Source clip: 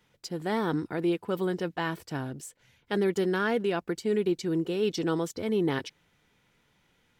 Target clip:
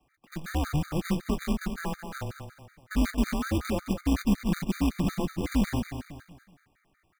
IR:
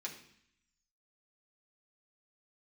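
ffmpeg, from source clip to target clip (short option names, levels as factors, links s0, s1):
-filter_complex "[0:a]highpass=f=180:t=q:w=0.5412,highpass=f=180:t=q:w=1.307,lowpass=f=2500:t=q:w=0.5176,lowpass=f=2500:t=q:w=0.7071,lowpass=f=2500:t=q:w=1.932,afreqshift=-150,acrossover=split=200[s0][s1];[s1]alimiter=level_in=1.33:limit=0.0631:level=0:latency=1:release=25,volume=0.75[s2];[s0][s2]amix=inputs=2:normalize=0,lowshelf=f=81:g=4,acrusher=bits=2:mode=log:mix=0:aa=0.000001,aecho=1:1:213|426|639|852:0.376|0.147|0.0572|0.0223,afftfilt=real='re*gt(sin(2*PI*5.4*pts/sr)*(1-2*mod(floor(b*sr/1024/1200),2)),0)':imag='im*gt(sin(2*PI*5.4*pts/sr)*(1-2*mod(floor(b*sr/1024/1200),2)),0)':win_size=1024:overlap=0.75,volume=1.33"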